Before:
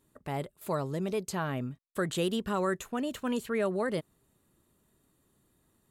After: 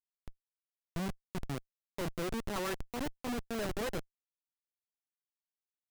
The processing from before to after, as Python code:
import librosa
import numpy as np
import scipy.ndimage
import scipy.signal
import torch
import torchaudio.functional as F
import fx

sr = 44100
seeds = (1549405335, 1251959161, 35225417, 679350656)

y = fx.filter_sweep_lowpass(x, sr, from_hz=180.0, to_hz=7400.0, start_s=0.92, end_s=3.68, q=1.3)
y = fx.cheby_harmonics(y, sr, harmonics=(3, 4, 6, 8), levels_db=(-16, -37, -12, -43), full_scale_db=-21.0)
y = fx.schmitt(y, sr, flips_db=-34.0)
y = F.gain(torch.from_numpy(y), 1.0).numpy()